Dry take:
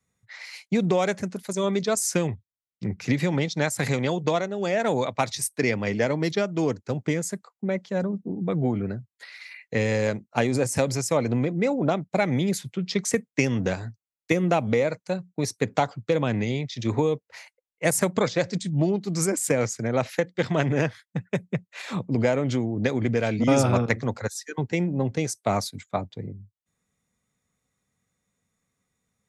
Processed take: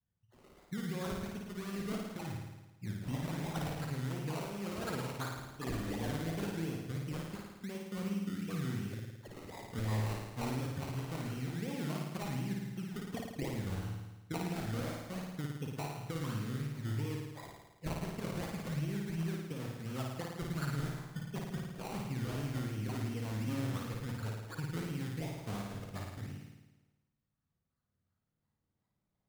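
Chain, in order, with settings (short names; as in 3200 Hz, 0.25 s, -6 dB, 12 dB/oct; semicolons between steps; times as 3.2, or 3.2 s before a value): spectral delay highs late, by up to 0.116 s; passive tone stack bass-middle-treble 6-0-2; notches 60/120/180 Hz; compressor, threshold -44 dBFS, peak gain reduction 9.5 dB; LFO low-pass saw up 0.26 Hz 920–4400 Hz; decimation with a swept rate 21×, swing 60% 2.8 Hz; flutter echo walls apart 9.4 m, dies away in 1.1 s; gain +7 dB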